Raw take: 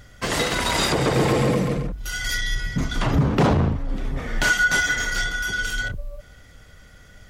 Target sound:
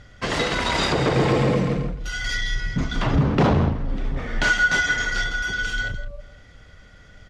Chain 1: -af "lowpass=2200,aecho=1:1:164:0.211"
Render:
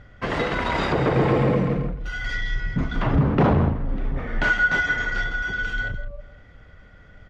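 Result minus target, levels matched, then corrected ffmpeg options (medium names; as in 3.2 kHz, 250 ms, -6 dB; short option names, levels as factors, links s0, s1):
4 kHz band -7.5 dB
-af "lowpass=5200,aecho=1:1:164:0.211"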